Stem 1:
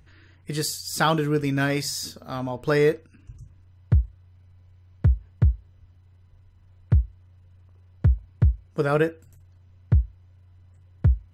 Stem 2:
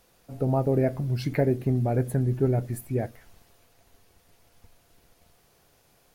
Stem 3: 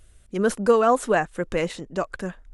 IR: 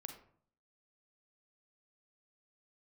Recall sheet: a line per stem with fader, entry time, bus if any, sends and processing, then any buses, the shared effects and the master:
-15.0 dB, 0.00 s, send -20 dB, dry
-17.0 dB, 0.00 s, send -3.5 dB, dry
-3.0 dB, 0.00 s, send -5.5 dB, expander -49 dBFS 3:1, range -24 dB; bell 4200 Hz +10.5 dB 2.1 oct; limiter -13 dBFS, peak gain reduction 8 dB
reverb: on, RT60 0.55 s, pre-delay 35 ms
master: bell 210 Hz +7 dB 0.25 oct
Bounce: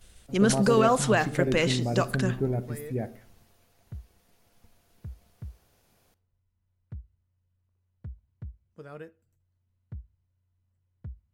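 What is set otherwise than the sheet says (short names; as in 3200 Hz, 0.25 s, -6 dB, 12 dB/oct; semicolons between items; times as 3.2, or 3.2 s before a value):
stem 1 -15.0 dB -> -22.5 dB; stem 2 -17.0 dB -> -7.0 dB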